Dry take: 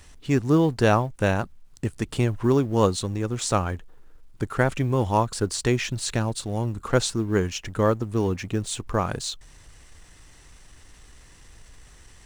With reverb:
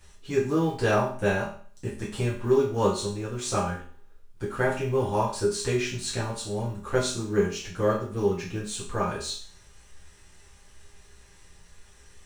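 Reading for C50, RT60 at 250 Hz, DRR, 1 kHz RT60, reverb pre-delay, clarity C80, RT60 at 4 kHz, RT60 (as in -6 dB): 5.5 dB, 0.45 s, -8.5 dB, 0.45 s, 5 ms, 10.5 dB, 0.45 s, 0.45 s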